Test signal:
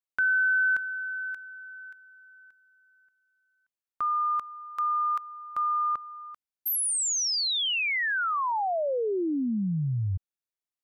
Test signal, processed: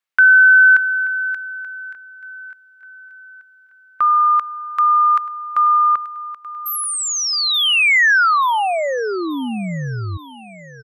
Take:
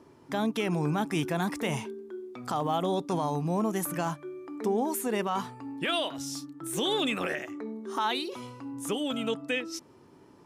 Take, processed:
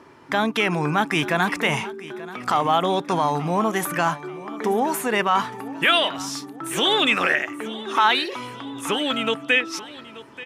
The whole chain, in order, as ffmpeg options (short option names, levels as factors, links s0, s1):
-af "equalizer=f=1800:w=0.5:g=12,aecho=1:1:882|1764|2646|3528:0.133|0.06|0.027|0.0122,volume=1.41"